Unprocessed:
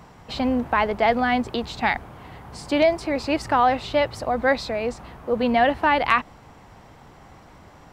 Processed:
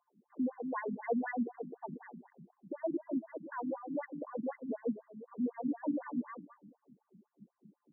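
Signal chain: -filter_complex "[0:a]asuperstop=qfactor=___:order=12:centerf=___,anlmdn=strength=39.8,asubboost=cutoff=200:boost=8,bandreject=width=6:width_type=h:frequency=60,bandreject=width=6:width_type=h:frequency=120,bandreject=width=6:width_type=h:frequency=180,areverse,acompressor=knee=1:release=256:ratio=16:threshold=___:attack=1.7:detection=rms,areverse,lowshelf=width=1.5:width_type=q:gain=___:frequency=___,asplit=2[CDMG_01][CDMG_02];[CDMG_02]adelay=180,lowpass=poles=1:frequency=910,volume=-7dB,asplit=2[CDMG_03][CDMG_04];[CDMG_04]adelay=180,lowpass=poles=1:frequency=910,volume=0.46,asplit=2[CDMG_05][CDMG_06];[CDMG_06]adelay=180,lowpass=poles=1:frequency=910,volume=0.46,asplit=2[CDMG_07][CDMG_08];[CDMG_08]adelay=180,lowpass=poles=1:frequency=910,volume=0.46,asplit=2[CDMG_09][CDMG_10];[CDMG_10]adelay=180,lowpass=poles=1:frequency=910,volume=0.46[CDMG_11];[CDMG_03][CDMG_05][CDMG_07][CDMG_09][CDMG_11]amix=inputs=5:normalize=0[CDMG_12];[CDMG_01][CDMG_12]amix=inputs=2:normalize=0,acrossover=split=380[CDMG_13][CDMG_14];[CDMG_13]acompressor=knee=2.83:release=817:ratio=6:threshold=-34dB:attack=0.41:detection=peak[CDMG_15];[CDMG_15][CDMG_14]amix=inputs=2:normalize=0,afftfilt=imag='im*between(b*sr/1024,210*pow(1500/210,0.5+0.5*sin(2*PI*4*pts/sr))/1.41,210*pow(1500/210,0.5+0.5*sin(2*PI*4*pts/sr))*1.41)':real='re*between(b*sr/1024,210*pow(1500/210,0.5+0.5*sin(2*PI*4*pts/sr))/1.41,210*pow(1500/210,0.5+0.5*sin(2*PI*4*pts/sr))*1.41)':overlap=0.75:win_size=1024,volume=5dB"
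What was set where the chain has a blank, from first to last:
7.5, 1300, -31dB, 6, 590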